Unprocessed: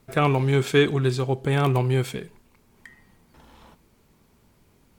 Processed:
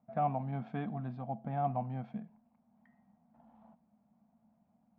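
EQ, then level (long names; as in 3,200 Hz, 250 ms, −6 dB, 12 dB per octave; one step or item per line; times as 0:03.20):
pair of resonant band-passes 390 Hz, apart 1.7 octaves
high-frequency loss of the air 230 metres
0.0 dB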